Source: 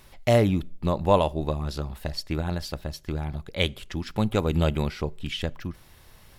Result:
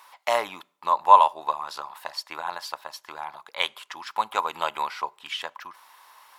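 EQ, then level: resonant high-pass 980 Hz, resonance Q 5.2; 0.0 dB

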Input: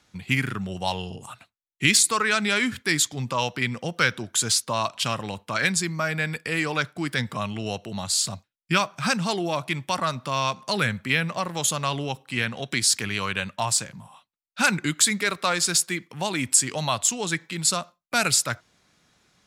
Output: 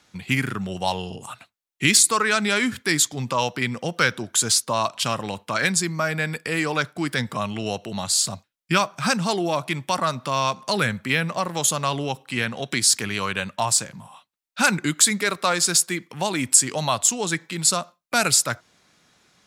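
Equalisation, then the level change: low shelf 110 Hz -8 dB; dynamic EQ 2600 Hz, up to -4 dB, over -36 dBFS, Q 0.75; +4.0 dB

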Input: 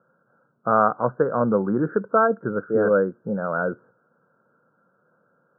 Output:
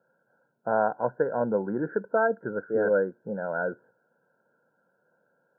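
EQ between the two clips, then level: Butterworth band-stop 1200 Hz, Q 2.5; low shelf 390 Hz -11 dB; 0.0 dB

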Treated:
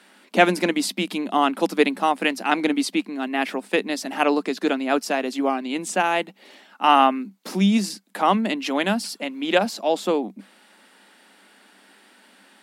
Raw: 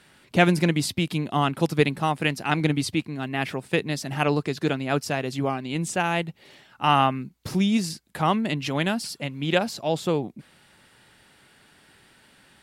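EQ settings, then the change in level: rippled Chebyshev high-pass 190 Hz, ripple 3 dB; +5.0 dB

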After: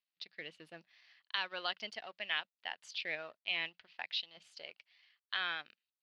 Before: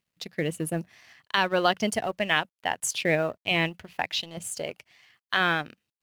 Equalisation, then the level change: band-pass 4600 Hz, Q 2.3; air absorption 350 m; +5.5 dB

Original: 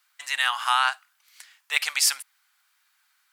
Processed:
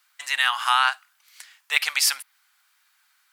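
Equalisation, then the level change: dynamic EQ 7700 Hz, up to -5 dB, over -39 dBFS, Q 1.3; dynamic EQ 510 Hz, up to -4 dB, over -37 dBFS, Q 1; +3.0 dB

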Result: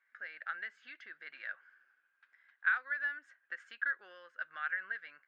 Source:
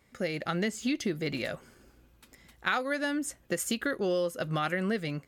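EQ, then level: resonant high-pass 1600 Hz, resonance Q 9.7; air absorption 82 m; tape spacing loss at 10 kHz 32 dB; -8.5 dB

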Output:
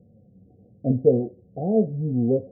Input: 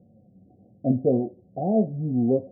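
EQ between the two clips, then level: air absorption 470 m; low shelf 180 Hz +11.5 dB; bell 460 Hz +11.5 dB 0.33 oct; -4.5 dB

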